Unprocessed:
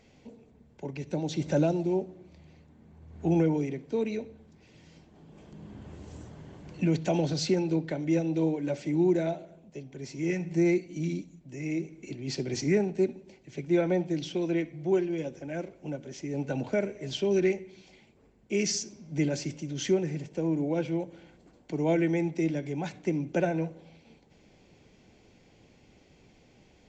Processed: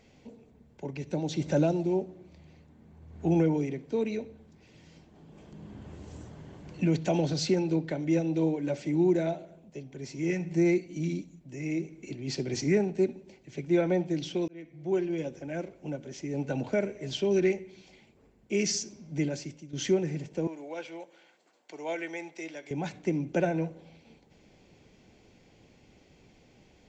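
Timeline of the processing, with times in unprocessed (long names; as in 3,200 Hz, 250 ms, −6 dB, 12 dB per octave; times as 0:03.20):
0:14.48–0:15.10: fade in
0:19.04–0:19.73: fade out, to −13 dB
0:20.47–0:22.71: Bessel high-pass filter 850 Hz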